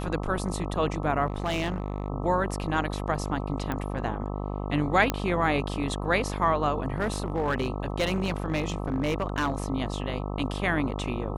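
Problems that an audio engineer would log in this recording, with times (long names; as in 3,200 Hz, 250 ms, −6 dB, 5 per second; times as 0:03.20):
mains buzz 50 Hz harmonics 26 −32 dBFS
0:01.26–0:02.08: clipping −23.5 dBFS
0:03.72: click −17 dBFS
0:05.10: click −9 dBFS
0:06.96–0:09.64: clipping −21 dBFS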